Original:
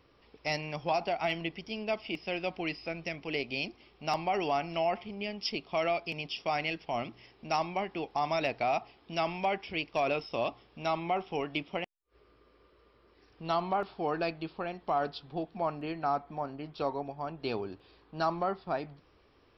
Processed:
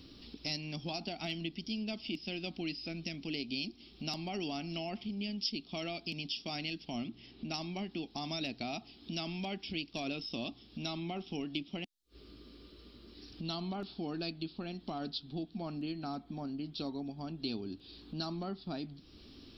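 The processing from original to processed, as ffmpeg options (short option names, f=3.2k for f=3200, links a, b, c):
-filter_complex "[0:a]asettb=1/sr,asplit=3[a][b][c];[a]atrim=end=7.044[d];[b]atrim=start=7.04:end=7.54,asetpts=PTS-STARTPTS,afade=t=in:d=0.004:c=qsin,afade=t=out:st=0.496:d=0.004:c=qsin,lowpass=3.5k[e];[c]atrim=start=7.536[f];[d][e]acrossfade=d=0.004:c1=hsin:c2=qsin[g];[g][f]acrossfade=d=0.004:c1=qsin:c2=hsin,equalizer=f=125:t=o:w=1:g=-3,equalizer=f=250:t=o:w=1:g=10,equalizer=f=500:t=o:w=1:g=-11,equalizer=f=1k:t=o:w=1:g=-12,equalizer=f=2k:t=o:w=1:g=-10,equalizer=f=4k:t=o:w=1:g=10,acompressor=threshold=-58dB:ratio=2,volume=11dB"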